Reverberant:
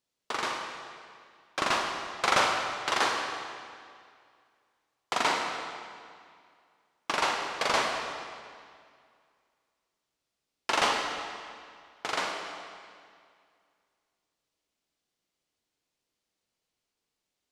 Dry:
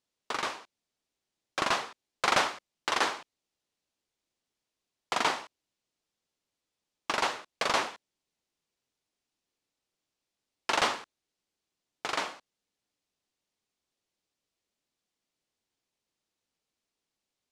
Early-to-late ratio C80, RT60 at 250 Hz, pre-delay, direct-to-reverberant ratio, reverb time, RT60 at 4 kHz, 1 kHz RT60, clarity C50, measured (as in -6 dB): 4.0 dB, 2.2 s, 30 ms, 1.5 dB, 2.1 s, 1.9 s, 2.2 s, 3.0 dB